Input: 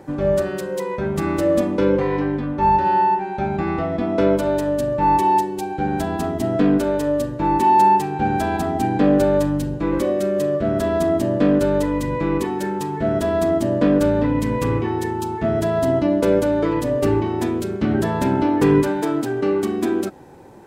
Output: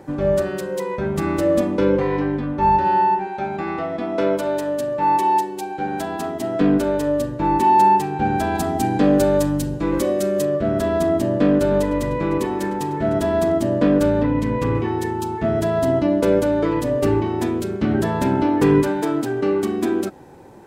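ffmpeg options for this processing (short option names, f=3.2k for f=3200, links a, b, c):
-filter_complex "[0:a]asettb=1/sr,asplit=3[a][b][c];[a]atrim=end=3.274[d];[b]atrim=start=3.27:end=6.61,asetpts=PTS-STARTPTS,afade=t=in:d=0.004:c=qsin,afade=t=out:st=3.336:d=0.004:c=qsin,highpass=f=370:p=1[e];[c]atrim=start=6.606[f];[d][e]acrossfade=d=0.004:c1=hsin:c2=qsin[g];[g][f]acrossfade=d=0.004:c1=qsin:c2=hsin,asettb=1/sr,asplit=3[h][i][j];[h]atrim=end=8.554[k];[i]atrim=start=8.55:end=10.45,asetpts=PTS-STARTPTS,afade=t=in:d=0.004:c=qsin,afade=t=out:st=1.896:d=0.004:c=qsin,bass=f=250:g=0,treble=f=4k:g=7[l];[j]atrim=start=10.446[m];[k][l]acrossfade=d=0.004:c1=hsin:c2=qsin[n];[n][m]acrossfade=d=0.004:c1=qsin:c2=hsin,asettb=1/sr,asplit=3[o][p][q];[o]atrim=end=11.314[r];[p]atrim=start=11.31:end=13.52,asetpts=PTS-STARTPTS,afade=t=in:d=0.004:c=qsin,afade=t=out:st=2.206:d=0.004:c=qsin,asplit=2[s][t];[t]adelay=303,lowpass=f=3k:p=1,volume=-11dB,asplit=2[u][v];[v]adelay=303,lowpass=f=3k:p=1,volume=0.5,asplit=2[w][x];[x]adelay=303,lowpass=f=3k:p=1,volume=0.5,asplit=2[y][z];[z]adelay=303,lowpass=f=3k:p=1,volume=0.5,asplit=2[aa][ab];[ab]adelay=303,lowpass=f=3k:p=1,volume=0.5[ac];[s][u][w][y][aa][ac]amix=inputs=6:normalize=0,atrim=end_sample=97461[ad];[q]atrim=start=13.516[ae];[r][ad]acrossfade=d=0.004:c1=hsin:c2=qsin[af];[af][ae]acrossfade=d=0.004:c1=qsin:c2=hsin,asettb=1/sr,asplit=3[ag][ah][ai];[ag]atrim=end=14.234[aj];[ah]atrim=start=14.23:end=14.75,asetpts=PTS-STARTPTS,afade=t=in:d=0.004:c=qsin,afade=t=out:st=0.516:d=0.004:c=qsin,lowpass=f=3.6k:p=1[ak];[ai]atrim=start=14.746[al];[aj][ak]acrossfade=d=0.004:c1=hsin:c2=qsin[am];[am][al]acrossfade=d=0.004:c1=qsin:c2=hsin"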